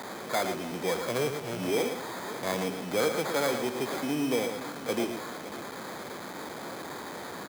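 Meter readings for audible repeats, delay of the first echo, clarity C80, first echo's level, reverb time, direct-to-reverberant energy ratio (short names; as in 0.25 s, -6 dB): 3, 0.113 s, none, -7.5 dB, none, none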